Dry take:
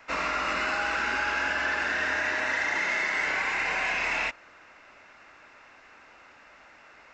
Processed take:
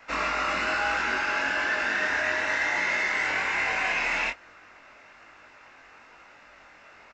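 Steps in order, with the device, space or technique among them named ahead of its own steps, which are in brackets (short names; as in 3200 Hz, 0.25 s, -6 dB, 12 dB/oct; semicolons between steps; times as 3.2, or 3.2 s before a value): double-tracked vocal (doubler 21 ms -13 dB; chorus 1.1 Hz, delay 19.5 ms, depth 3.1 ms); gain +4 dB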